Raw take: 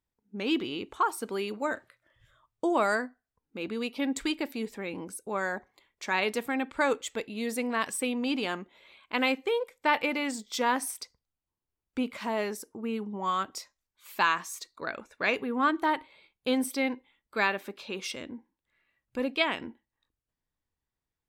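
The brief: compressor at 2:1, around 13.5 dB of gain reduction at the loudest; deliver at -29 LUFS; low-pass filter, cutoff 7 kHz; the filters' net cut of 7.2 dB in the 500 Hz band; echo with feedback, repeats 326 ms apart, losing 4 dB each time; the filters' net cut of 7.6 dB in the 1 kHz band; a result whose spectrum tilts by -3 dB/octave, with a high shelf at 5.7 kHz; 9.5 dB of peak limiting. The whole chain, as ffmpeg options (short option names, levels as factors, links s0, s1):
-af "lowpass=7000,equalizer=f=500:t=o:g=-7,equalizer=f=1000:t=o:g=-7.5,highshelf=f=5700:g=3.5,acompressor=threshold=0.00398:ratio=2,alimiter=level_in=3.35:limit=0.0631:level=0:latency=1,volume=0.299,aecho=1:1:326|652|978|1304|1630|1956|2282|2608|2934:0.631|0.398|0.25|0.158|0.0994|0.0626|0.0394|0.0249|0.0157,volume=5.96"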